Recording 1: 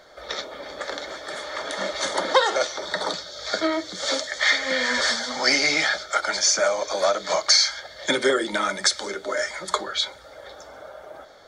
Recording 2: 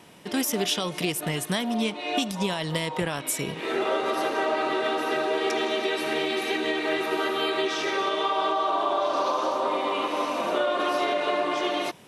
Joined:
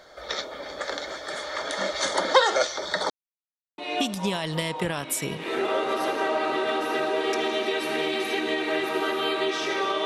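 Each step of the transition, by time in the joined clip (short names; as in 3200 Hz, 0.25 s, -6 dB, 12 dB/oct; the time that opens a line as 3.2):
recording 1
3.1–3.78 mute
3.78 switch to recording 2 from 1.95 s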